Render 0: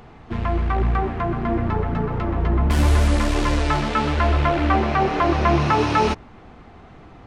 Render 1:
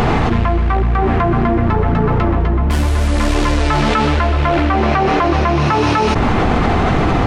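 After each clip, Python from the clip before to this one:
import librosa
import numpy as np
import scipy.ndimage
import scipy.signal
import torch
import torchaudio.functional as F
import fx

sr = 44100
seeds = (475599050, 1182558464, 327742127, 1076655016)

y = fx.env_flatten(x, sr, amount_pct=100)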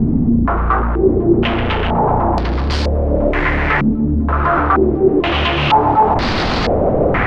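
y = 10.0 ** (-12.0 / 20.0) * (np.abs((x / 10.0 ** (-12.0 / 20.0) + 3.0) % 4.0 - 2.0) - 1.0)
y = fx.filter_held_lowpass(y, sr, hz=2.1, low_hz=240.0, high_hz=4600.0)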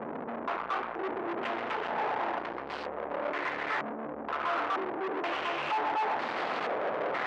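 y = fx.tube_stage(x, sr, drive_db=24.0, bias=0.8)
y = fx.bandpass_edges(y, sr, low_hz=500.0, high_hz=2200.0)
y = y * 10.0 ** (-2.5 / 20.0)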